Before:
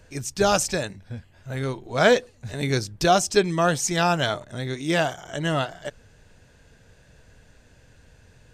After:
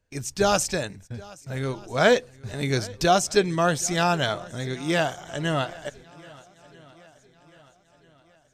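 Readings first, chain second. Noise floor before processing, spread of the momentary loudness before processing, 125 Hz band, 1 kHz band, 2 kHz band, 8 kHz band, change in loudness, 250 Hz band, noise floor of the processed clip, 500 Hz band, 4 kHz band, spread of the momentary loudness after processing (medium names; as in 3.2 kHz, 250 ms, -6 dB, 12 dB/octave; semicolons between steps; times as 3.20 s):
-56 dBFS, 16 LU, -1.0 dB, -1.0 dB, -1.0 dB, -1.0 dB, -1.0 dB, -1.0 dB, -61 dBFS, -1.0 dB, -1.0 dB, 16 LU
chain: gate -45 dBFS, range -21 dB; shuffle delay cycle 1292 ms, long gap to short 1.5:1, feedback 41%, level -22.5 dB; trim -1 dB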